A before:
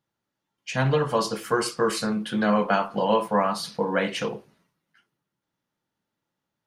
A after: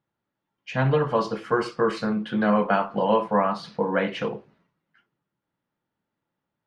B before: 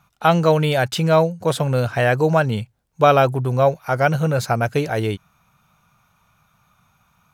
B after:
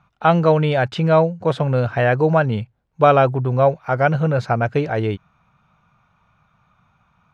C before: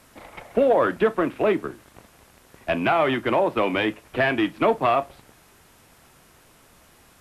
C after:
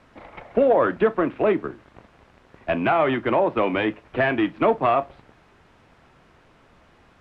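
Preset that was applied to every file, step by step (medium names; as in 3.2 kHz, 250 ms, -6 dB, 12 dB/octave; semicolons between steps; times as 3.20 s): Bessel low-pass 2.4 kHz, order 2; trim +1 dB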